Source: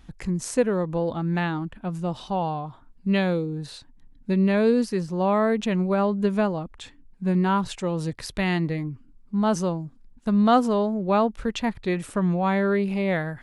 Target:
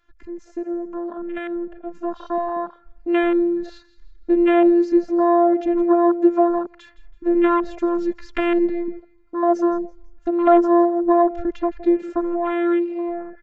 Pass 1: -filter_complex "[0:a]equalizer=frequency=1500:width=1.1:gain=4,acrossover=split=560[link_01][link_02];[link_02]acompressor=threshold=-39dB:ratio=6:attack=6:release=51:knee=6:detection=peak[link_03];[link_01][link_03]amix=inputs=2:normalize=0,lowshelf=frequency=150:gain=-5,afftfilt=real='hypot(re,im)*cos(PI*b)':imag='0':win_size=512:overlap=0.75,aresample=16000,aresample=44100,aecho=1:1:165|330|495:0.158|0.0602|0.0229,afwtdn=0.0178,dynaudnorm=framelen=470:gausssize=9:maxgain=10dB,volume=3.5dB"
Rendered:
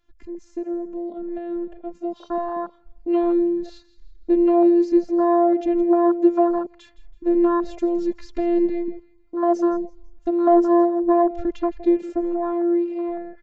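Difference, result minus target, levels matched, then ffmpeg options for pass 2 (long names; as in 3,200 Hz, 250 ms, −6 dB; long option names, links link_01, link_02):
2,000 Hz band −9.5 dB
-filter_complex "[0:a]equalizer=frequency=1500:width=1.1:gain=16,acrossover=split=560[link_01][link_02];[link_02]acompressor=threshold=-39dB:ratio=6:attack=6:release=51:knee=6:detection=peak[link_03];[link_01][link_03]amix=inputs=2:normalize=0,lowshelf=frequency=150:gain=-5,afftfilt=real='hypot(re,im)*cos(PI*b)':imag='0':win_size=512:overlap=0.75,aresample=16000,aresample=44100,aecho=1:1:165|330|495:0.158|0.0602|0.0229,afwtdn=0.0178,dynaudnorm=framelen=470:gausssize=9:maxgain=10dB,volume=3.5dB"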